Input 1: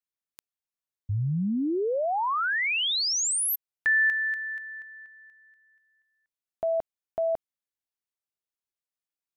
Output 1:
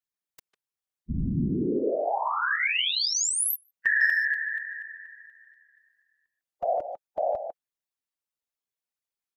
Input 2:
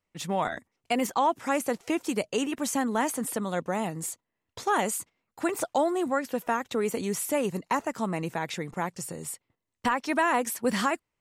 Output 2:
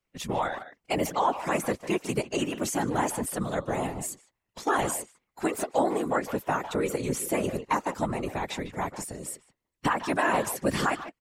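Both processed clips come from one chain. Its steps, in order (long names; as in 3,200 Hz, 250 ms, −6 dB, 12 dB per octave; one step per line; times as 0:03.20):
spectral magnitudes quantised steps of 15 dB
far-end echo of a speakerphone 150 ms, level −10 dB
random phases in short frames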